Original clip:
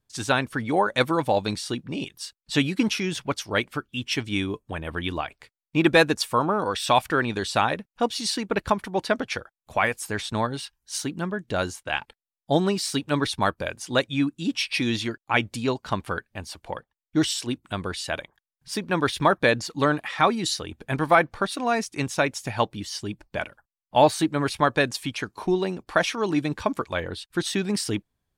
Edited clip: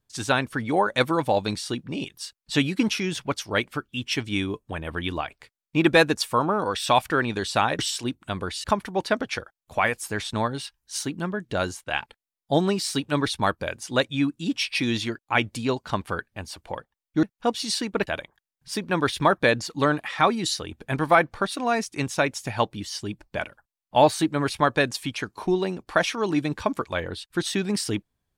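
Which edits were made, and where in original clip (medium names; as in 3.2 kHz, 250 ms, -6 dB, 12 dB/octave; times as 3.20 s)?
7.79–8.63 s: swap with 17.22–18.07 s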